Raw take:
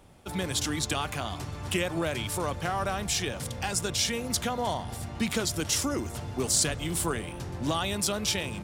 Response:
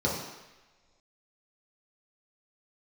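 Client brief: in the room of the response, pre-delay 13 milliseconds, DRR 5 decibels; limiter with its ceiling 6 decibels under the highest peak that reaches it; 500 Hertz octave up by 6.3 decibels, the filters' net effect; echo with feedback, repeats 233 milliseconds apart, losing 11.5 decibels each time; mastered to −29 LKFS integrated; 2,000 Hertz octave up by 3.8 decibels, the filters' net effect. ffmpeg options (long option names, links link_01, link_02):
-filter_complex "[0:a]equalizer=frequency=500:width_type=o:gain=7.5,equalizer=frequency=2000:width_type=o:gain=4.5,alimiter=limit=-18dB:level=0:latency=1,aecho=1:1:233|466|699:0.266|0.0718|0.0194,asplit=2[link_01][link_02];[1:a]atrim=start_sample=2205,adelay=13[link_03];[link_02][link_03]afir=irnorm=-1:irlink=0,volume=-16dB[link_04];[link_01][link_04]amix=inputs=2:normalize=0,volume=-2.5dB"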